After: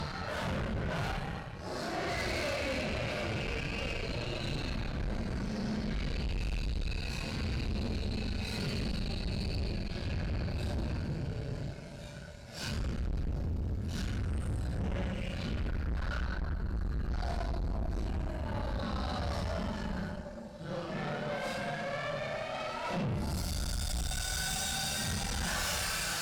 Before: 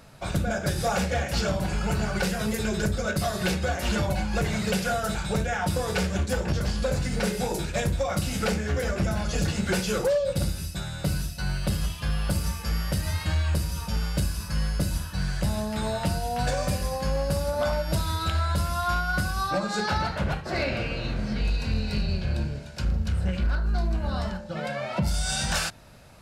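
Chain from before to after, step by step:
extreme stretch with random phases 4.7×, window 0.05 s, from 0:20.10
tube saturation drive 31 dB, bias 0.7

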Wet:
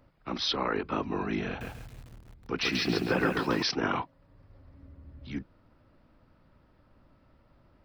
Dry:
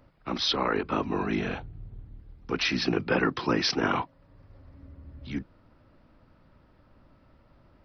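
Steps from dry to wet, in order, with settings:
0:01.47–0:03.63: feedback echo at a low word length 137 ms, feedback 35%, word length 8 bits, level −3 dB
level −3 dB

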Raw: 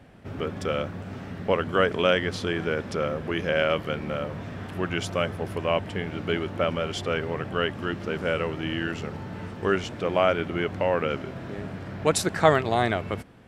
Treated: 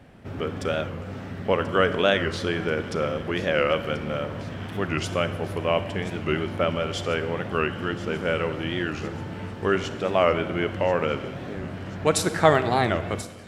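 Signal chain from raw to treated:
delay with a high-pass on its return 1,035 ms, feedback 67%, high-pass 3,600 Hz, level −13 dB
on a send at −11 dB: convolution reverb RT60 1.4 s, pre-delay 32 ms
on the sum: wow of a warped record 45 rpm, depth 160 cents
level +1 dB

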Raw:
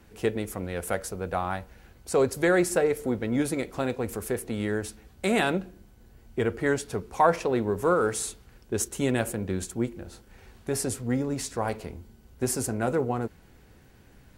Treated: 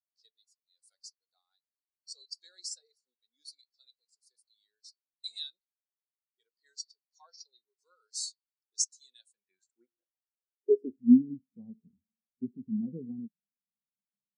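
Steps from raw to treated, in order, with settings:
flat-topped bell 6,500 Hz +16 dB
band-pass filter sweep 4,400 Hz → 200 Hz, 0:09.07–0:11.20
every bin expanded away from the loudest bin 2.5 to 1

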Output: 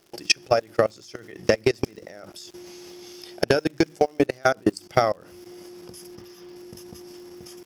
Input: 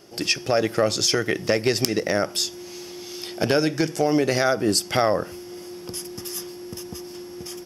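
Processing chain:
high-shelf EQ 2,600 Hz −2.5 dB
mains-hum notches 50/100/150/200/250/300 Hz
output level in coarse steps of 20 dB
transient designer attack +9 dB, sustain −5 dB
0:06.15–0:06.56: moving average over 5 samples
surface crackle 160 per second −40 dBFS
level −3 dB

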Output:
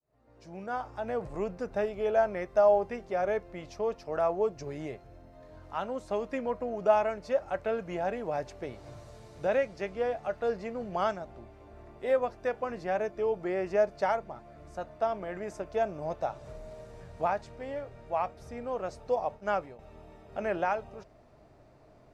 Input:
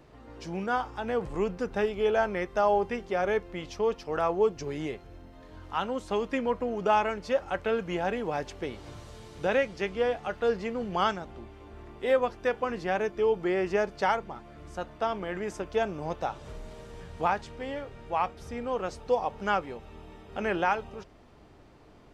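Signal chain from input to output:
fade in at the beginning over 0.99 s
thirty-one-band graphic EQ 125 Hz +7 dB, 630 Hz +11 dB, 3,150 Hz −7 dB
0:19.16–0:19.79: downward expander −29 dBFS
level −5.5 dB

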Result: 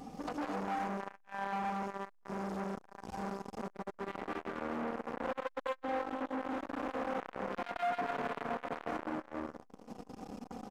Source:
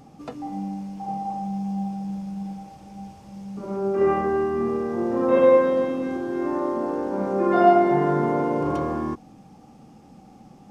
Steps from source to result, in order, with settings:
mains-hum notches 50/100/150/200/250/300/350/400 Hz
convolution reverb RT60 1.0 s, pre-delay 115 ms, DRR −3.5 dB
downward compressor 4 to 1, threshold −31 dBFS, peak gain reduction 20 dB
hard clipping −32 dBFS, distortion −10 dB
comb filter 4.1 ms, depth 65%
saturating transformer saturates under 730 Hz
level +1 dB

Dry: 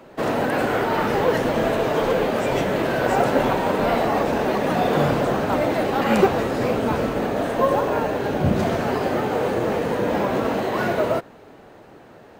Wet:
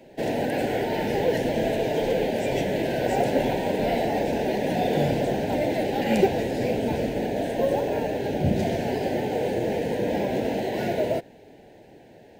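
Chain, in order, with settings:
Butterworth band-reject 1,200 Hz, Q 1.3
level −3 dB

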